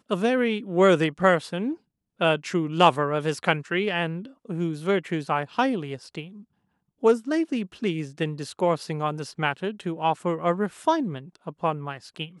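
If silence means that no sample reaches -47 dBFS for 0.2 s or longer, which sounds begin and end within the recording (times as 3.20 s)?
2.19–6.43 s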